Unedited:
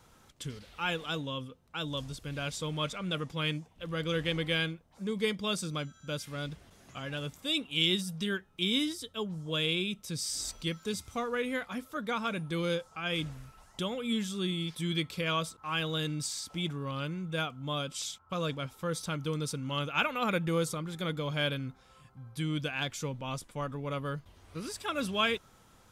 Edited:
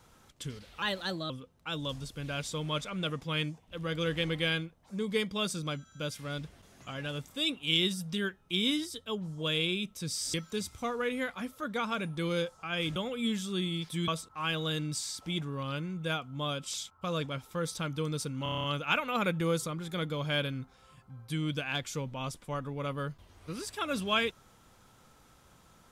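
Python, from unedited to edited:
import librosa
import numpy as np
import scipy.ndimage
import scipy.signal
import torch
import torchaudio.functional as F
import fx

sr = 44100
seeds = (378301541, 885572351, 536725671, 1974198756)

y = fx.edit(x, sr, fx.speed_span(start_s=0.82, length_s=0.56, speed=1.17),
    fx.cut(start_s=10.42, length_s=0.25),
    fx.cut(start_s=13.29, length_s=0.53),
    fx.cut(start_s=14.94, length_s=0.42),
    fx.stutter(start_s=19.71, slice_s=0.03, count=8), tone=tone)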